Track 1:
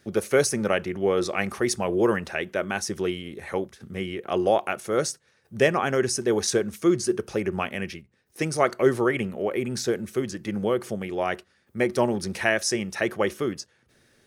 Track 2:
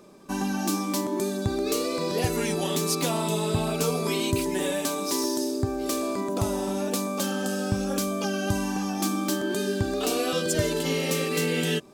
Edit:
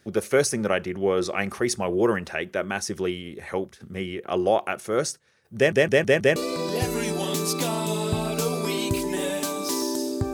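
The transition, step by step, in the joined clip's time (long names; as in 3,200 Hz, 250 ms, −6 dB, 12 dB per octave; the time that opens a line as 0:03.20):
track 1
0:05.56: stutter in place 0.16 s, 5 plays
0:06.36: continue with track 2 from 0:01.78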